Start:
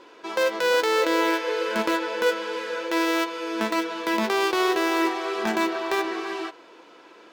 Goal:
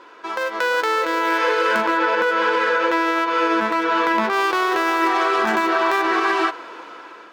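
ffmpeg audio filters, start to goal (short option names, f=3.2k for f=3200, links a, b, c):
-filter_complex "[0:a]acompressor=threshold=-24dB:ratio=6,asettb=1/sr,asplit=3[a][b][c];[a]atrim=end=1.814[d];[b]atrim=start=1.81:end=4.33,asetpts=PTS-STARTPTS,afade=t=in:d=0.004:c=qsin,afade=t=out:st=2.516:d=0.004:c=qsin,aemphasis=mode=reproduction:type=cd[e];[c]atrim=start=4.326[f];[d][e]acrossfade=d=0.004:c1=hsin:c2=qsin[g];[g][f]acrossfade=d=0.004:c1=qsin:c2=hsin,dynaudnorm=f=380:g=5:m=10.5dB,equalizer=f=1.3k:t=o:w=1.4:g=10,bandreject=f=54.58:t=h:w=4,bandreject=f=109.16:t=h:w=4,bandreject=f=163.74:t=h:w=4,alimiter=level_in=8dB:limit=-1dB:release=50:level=0:latency=1,volume=-9dB"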